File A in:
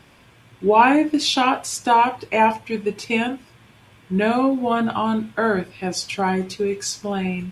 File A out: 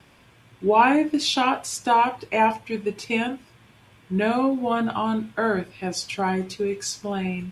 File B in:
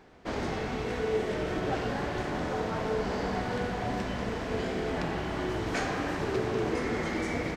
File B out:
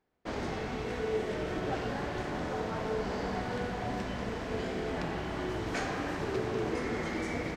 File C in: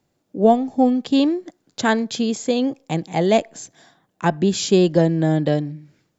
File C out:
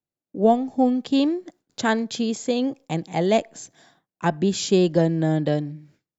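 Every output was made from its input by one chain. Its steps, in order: gate with hold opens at -44 dBFS; trim -3 dB

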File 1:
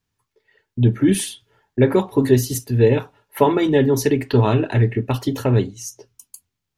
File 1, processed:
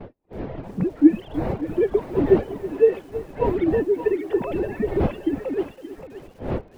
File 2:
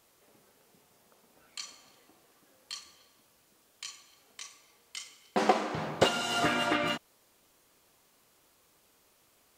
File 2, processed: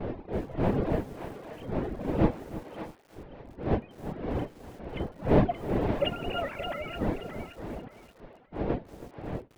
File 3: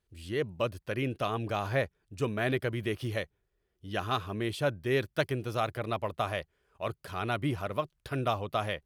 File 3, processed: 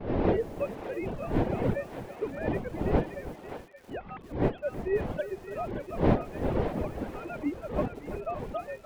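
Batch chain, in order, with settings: formants replaced by sine waves; wind noise 540 Hz -26 dBFS; reverb removal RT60 1.4 s; gate -41 dBFS, range -20 dB; peaking EQ 1.2 kHz -7 dB 0.97 oct; in parallel at -2.5 dB: gain riding within 4 dB 0.5 s; on the sum: distance through air 240 m; on a send: thinning echo 575 ms, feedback 29%, high-pass 860 Hz, level -7 dB; on the sum: bit-crushed delay 324 ms, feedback 35%, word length 6-bit, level -14.5 dB; trim -7.5 dB

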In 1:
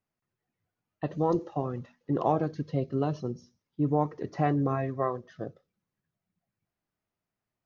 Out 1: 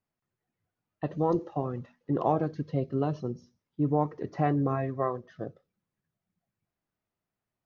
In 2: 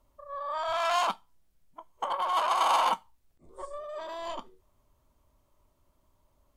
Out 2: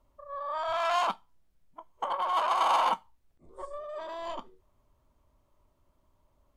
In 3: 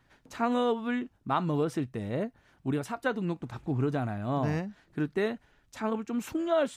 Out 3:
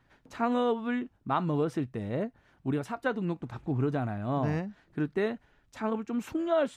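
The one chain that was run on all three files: treble shelf 4.4 kHz -7.5 dB

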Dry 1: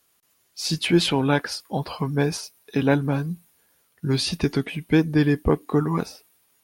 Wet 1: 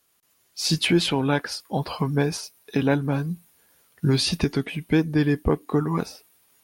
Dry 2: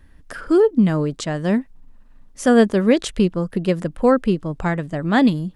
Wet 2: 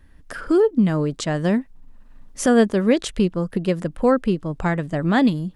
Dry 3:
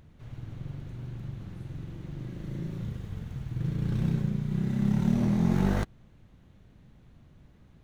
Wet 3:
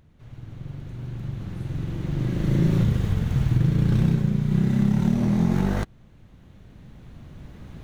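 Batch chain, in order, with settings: recorder AGC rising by 6.7 dB/s; trim -2 dB

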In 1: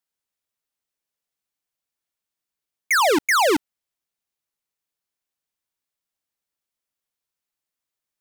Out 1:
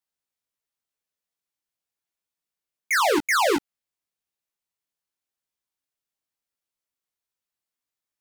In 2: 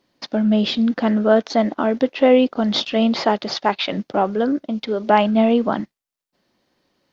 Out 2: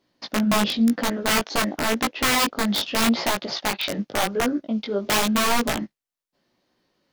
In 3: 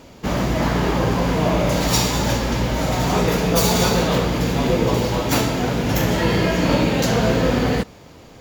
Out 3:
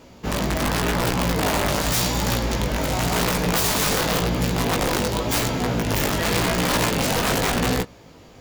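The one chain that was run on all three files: integer overflow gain 11.5 dB; chorus 0.9 Hz, delay 16 ms, depth 4.3 ms

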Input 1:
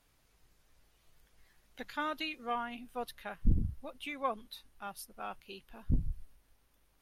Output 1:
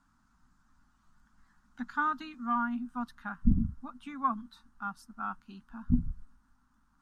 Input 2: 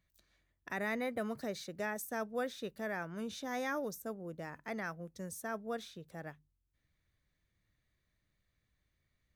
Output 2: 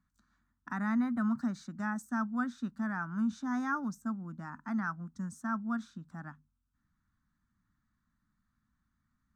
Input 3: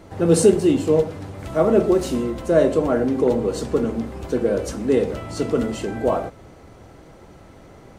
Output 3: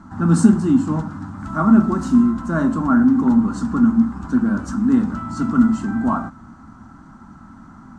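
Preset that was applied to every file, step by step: FFT filter 130 Hz 0 dB, 240 Hz +13 dB, 470 Hz -23 dB, 890 Hz +4 dB, 1.4 kHz +10 dB, 2.2 kHz -12 dB, 3.2 kHz -11 dB, 5.2 kHz -6 dB, 7.8 kHz -3 dB, 11 kHz -18 dB

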